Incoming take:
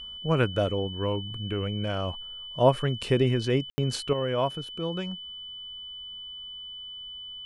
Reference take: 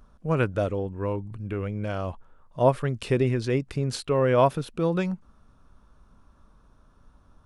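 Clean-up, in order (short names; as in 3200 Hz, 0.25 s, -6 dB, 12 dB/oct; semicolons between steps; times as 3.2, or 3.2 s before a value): notch 3000 Hz, Q 30; room tone fill 3.7–3.78; gain correction +7 dB, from 4.13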